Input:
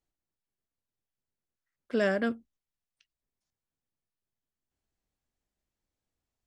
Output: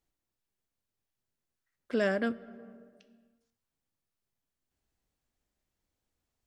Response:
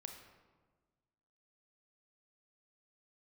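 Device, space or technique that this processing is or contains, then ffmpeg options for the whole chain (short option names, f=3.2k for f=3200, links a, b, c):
compressed reverb return: -filter_complex "[0:a]asplit=2[a][b];[1:a]atrim=start_sample=2205[c];[b][c]afir=irnorm=-1:irlink=0,acompressor=threshold=-45dB:ratio=12,volume=4dB[d];[a][d]amix=inputs=2:normalize=0,volume=-2.5dB"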